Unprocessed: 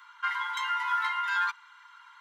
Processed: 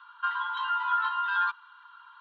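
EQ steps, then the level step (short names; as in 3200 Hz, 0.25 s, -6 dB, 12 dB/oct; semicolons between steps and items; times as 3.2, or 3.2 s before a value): air absorption 240 m; bell 5100 Hz -7 dB 0.23 oct; fixed phaser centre 2100 Hz, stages 6; +4.0 dB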